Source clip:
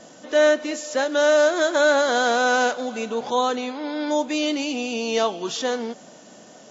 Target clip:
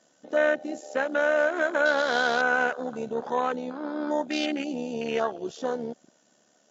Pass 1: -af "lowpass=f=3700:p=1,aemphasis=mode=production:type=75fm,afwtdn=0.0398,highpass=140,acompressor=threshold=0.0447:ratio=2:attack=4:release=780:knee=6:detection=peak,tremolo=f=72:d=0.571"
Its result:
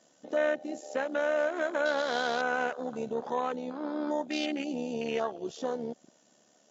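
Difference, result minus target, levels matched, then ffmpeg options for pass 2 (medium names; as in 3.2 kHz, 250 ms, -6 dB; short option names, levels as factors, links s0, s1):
compression: peak gain reduction +4 dB; 2 kHz band -3.0 dB
-af "lowpass=f=3700:p=1,aemphasis=mode=production:type=75fm,afwtdn=0.0398,highpass=140,equalizer=f=1500:t=o:w=0.38:g=4.5,acompressor=threshold=0.141:ratio=2:attack=4:release=780:knee=6:detection=peak,tremolo=f=72:d=0.571"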